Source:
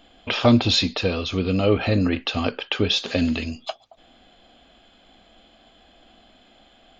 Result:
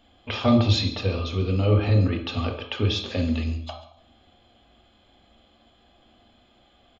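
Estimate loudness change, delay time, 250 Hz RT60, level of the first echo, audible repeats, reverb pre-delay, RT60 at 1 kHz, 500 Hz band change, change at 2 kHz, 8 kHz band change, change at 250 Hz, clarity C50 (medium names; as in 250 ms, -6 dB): -2.0 dB, 137 ms, 0.75 s, -17.5 dB, 1, 3 ms, 0.55 s, -4.0 dB, -6.5 dB, no reading, -3.5 dB, 7.0 dB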